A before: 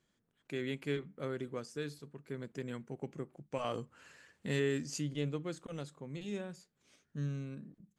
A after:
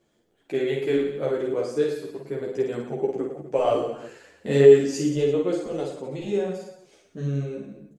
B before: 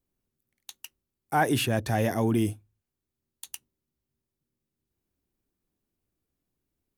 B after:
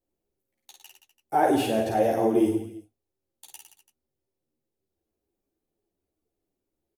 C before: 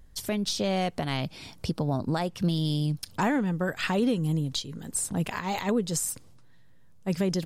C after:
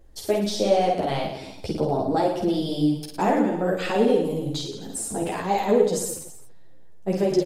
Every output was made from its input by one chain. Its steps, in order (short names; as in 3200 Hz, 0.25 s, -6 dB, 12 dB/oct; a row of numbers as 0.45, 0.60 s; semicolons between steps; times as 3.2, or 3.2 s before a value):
band shelf 500 Hz +10 dB; reverse bouncing-ball echo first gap 50 ms, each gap 1.15×, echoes 5; ensemble effect; match loudness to -24 LUFS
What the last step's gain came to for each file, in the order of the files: +8.5, -3.0, +1.0 dB